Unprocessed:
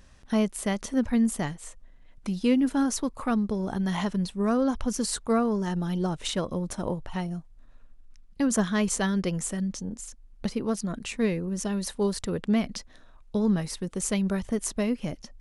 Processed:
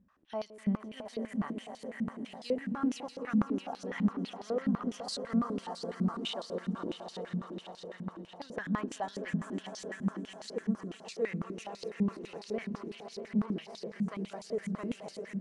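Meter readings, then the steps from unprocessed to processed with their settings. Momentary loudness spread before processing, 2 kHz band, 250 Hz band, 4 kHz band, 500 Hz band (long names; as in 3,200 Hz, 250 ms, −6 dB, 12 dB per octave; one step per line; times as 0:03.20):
9 LU, −7.0 dB, −8.0 dB, −6.5 dB, −7.0 dB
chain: echo that builds up and dies away 127 ms, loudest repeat 5, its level −11 dB
band-pass on a step sequencer 12 Hz 200–4,500 Hz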